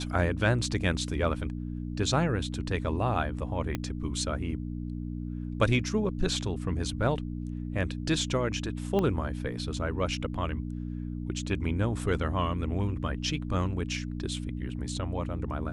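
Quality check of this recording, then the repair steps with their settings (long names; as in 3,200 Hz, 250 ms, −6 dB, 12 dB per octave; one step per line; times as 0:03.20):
mains hum 60 Hz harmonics 5 −35 dBFS
0:03.75: click −16 dBFS
0:08.99: click −17 dBFS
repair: click removal
hum removal 60 Hz, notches 5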